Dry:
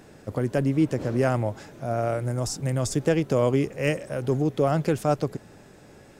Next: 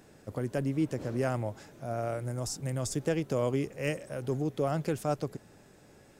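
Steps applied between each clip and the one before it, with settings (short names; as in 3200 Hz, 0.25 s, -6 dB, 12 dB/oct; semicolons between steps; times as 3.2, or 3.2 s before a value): high shelf 6400 Hz +5 dB; gain -7.5 dB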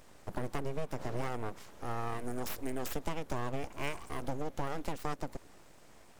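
compressor, threshold -31 dBFS, peak gain reduction 7.5 dB; full-wave rectifier; gain +1.5 dB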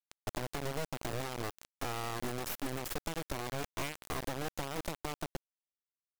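compressor 12:1, threshold -41 dBFS, peak gain reduction 13.5 dB; bit-crush 7-bit; gain +6.5 dB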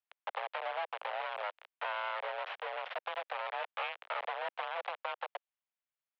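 mistuned SSB +190 Hz 360–3100 Hz; gain +3 dB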